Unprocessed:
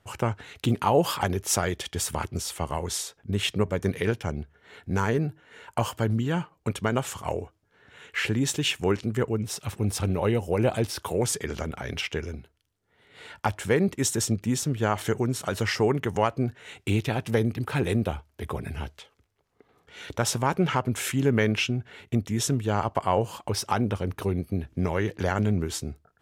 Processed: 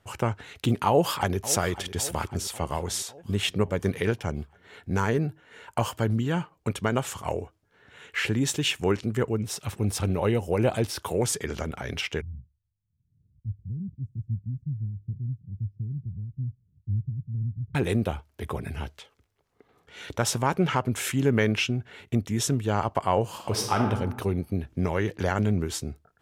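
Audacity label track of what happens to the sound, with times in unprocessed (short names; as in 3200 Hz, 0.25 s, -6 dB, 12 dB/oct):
0.880000	1.370000	echo throw 0.55 s, feedback 60%, level -15 dB
12.210000	17.750000	inverse Chebyshev low-pass stop band from 670 Hz, stop band 70 dB
23.290000	23.850000	reverb throw, RT60 1 s, DRR 2 dB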